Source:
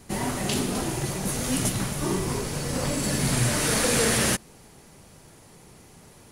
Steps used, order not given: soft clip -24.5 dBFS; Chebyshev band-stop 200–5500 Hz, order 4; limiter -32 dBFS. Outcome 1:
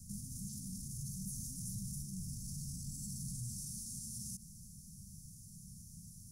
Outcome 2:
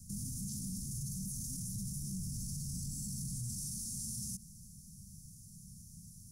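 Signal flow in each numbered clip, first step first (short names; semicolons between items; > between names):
limiter > soft clip > Chebyshev band-stop; Chebyshev band-stop > limiter > soft clip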